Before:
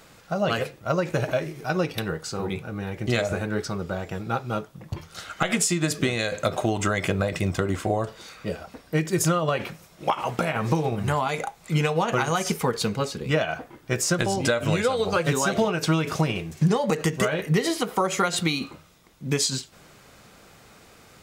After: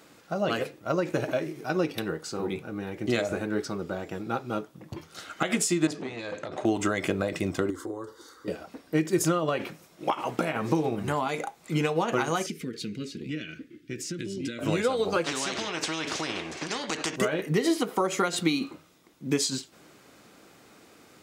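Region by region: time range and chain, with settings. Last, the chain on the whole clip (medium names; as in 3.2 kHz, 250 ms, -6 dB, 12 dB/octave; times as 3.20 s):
5.87–6.65 s: distance through air 75 m + compression 10:1, threshold -23 dBFS + transformer saturation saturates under 1.1 kHz
7.70–8.48 s: compression 2:1, threshold -30 dBFS + static phaser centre 670 Hz, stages 6
12.46–14.59 s: Chebyshev band-stop 310–2200 Hz + treble shelf 6.5 kHz -10.5 dB + compression 3:1, threshold -28 dBFS
15.24–17.16 s: distance through air 110 m + spectrum-flattening compressor 4:1
whole clip: high-pass 180 Hz 6 dB/octave; peaking EQ 300 Hz +9 dB 0.77 oct; trim -4 dB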